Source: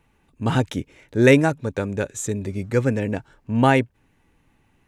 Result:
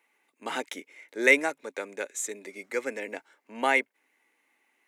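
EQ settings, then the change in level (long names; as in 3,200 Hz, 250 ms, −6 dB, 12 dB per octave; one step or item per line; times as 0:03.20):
Bessel high-pass filter 460 Hz, order 6
parametric band 2,100 Hz +12 dB 0.26 octaves
high-shelf EQ 6,500 Hz +7 dB
−6.5 dB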